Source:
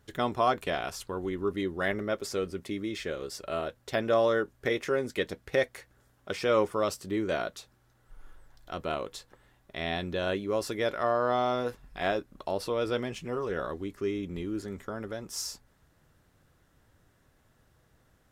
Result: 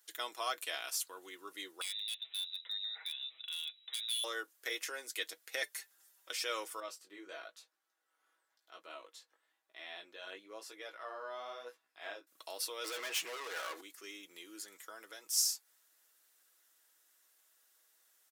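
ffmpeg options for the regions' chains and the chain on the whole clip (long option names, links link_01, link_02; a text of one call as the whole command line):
ffmpeg -i in.wav -filter_complex "[0:a]asettb=1/sr,asplit=3[link_01][link_02][link_03];[link_01]atrim=end=1.814[link_04];[link_02]atrim=start=1.81:end=4.24,asetpts=PTS-STARTPTS,afade=type=in:duration=0.004:curve=qsin,afade=type=out:start_time=2.426:duration=0.004:curve=qsin,acompressor=threshold=-42dB:ratio=2:attack=3.2:release=140:knee=1:detection=peak,lowpass=frequency=3400:width_type=q:width=0.5098,lowpass=frequency=3400:width_type=q:width=0.6013,lowpass=frequency=3400:width_type=q:width=0.9,lowpass=frequency=3400:width_type=q:width=2.563,afreqshift=-4000,aeval=exprs='0.0282*(abs(mod(val(0)/0.0282+3,4)-2)-1)':channel_layout=same[link_05];[link_03]atrim=start=4.236[link_06];[link_04][link_05]acrossfade=duration=0.004:curve1=hsin:curve2=qsin[link_07];[link_07][link_06]acrossfade=duration=0.004:curve1=qsin:curve2=hsin,asettb=1/sr,asplit=3[link_08][link_09][link_10];[link_08]atrim=end=5.624[link_11];[link_09]atrim=start=5.62:end=6.29,asetpts=PTS-STARTPTS,afade=type=in:duration=0.004:curve=qsin,afade=type=out:start_time=0.666:duration=0.004:curve=qsin,afreqshift=-72,aecho=1:1:5.1:0.65,atrim=end_sample=29547[link_12];[link_10]atrim=start=6.286[link_13];[link_11][link_12]acrossfade=duration=0.004:curve1=hsin:curve2=qsin[link_14];[link_14][link_13]acrossfade=duration=0.004:curve1=qsin:curve2=hsin,asettb=1/sr,asplit=3[link_15][link_16][link_17];[link_15]atrim=end=6.804[link_18];[link_16]atrim=start=6.8:end=12.27,asetpts=PTS-STARTPTS,afade=type=in:duration=0.004:curve=qsin,afade=type=out:start_time=5.466:duration=0.004:curve=qsin,lowpass=frequency=1500:poles=1,flanger=delay=15.5:depth=5.7:speed=1[link_19];[link_17]atrim=start=12.266[link_20];[link_18][link_19]acrossfade=duration=0.004:curve1=hsin:curve2=qsin[link_21];[link_21][link_20]acrossfade=duration=0.004:curve1=qsin:curve2=hsin,asettb=1/sr,asplit=3[link_22][link_23][link_24];[link_22]atrim=end=12.844[link_25];[link_23]atrim=start=12.84:end=13.81,asetpts=PTS-STARTPTS,afade=type=in:duration=0.004:curve=qsin,afade=type=out:start_time=0.966:duration=0.004:curve=qsin,asplit=2[link_26][link_27];[link_27]highpass=frequency=720:poles=1,volume=31dB,asoftclip=type=tanh:threshold=-17.5dB[link_28];[link_26][link_28]amix=inputs=2:normalize=0,lowpass=frequency=1300:poles=1,volume=-6dB,highshelf=frequency=12000:gain=6.5,acompressor=threshold=-27dB:ratio=4:attack=3.2:release=140:knee=1:detection=peak[link_29];[link_24]atrim=start=13.806[link_30];[link_25][link_29]acrossfade=duration=0.004:curve1=hsin:curve2=qsin[link_31];[link_31][link_30]acrossfade=duration=0.004:curve1=qsin:curve2=hsin,highpass=frequency=280:width=0.5412,highpass=frequency=280:width=1.3066,aderivative,aecho=1:1:6.2:0.45,volume=5dB" out.wav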